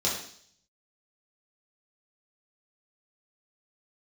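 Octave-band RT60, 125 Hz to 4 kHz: 0.75 s, 0.65 s, 0.60 s, 0.55 s, 0.60 s, 0.75 s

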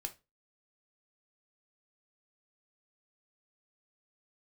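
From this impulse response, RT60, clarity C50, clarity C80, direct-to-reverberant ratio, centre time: 0.25 s, 17.0 dB, 25.5 dB, 5.5 dB, 7 ms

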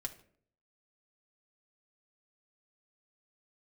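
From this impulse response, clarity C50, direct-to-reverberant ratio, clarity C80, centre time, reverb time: 14.0 dB, 2.5 dB, 18.0 dB, 7 ms, 0.55 s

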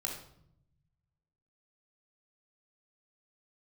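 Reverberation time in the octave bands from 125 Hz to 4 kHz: 1.9 s, 1.3 s, 0.75 s, 0.65 s, 0.50 s, 0.50 s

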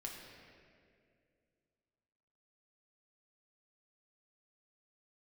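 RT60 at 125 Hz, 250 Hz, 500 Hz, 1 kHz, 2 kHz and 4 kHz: 2.8 s, 2.8 s, 2.7 s, 1.9 s, 2.0 s, 1.5 s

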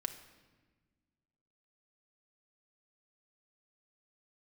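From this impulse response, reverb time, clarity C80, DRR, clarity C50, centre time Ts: 1.3 s, 12.5 dB, 5.5 dB, 11.0 dB, 13 ms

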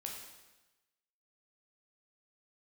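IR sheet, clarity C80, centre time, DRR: 5.0 dB, 49 ms, -0.5 dB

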